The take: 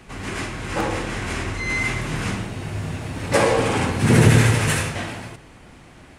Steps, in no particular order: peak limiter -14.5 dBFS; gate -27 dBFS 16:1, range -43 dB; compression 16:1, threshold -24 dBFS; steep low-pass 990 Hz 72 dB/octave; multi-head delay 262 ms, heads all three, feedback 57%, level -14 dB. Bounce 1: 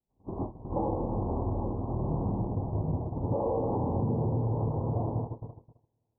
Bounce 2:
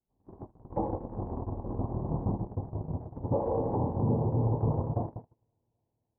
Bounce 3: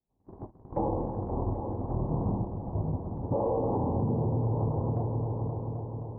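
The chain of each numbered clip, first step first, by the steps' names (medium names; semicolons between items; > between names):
peak limiter > multi-head delay > gate > compression > steep low-pass; steep low-pass > peak limiter > compression > multi-head delay > gate; peak limiter > steep low-pass > gate > multi-head delay > compression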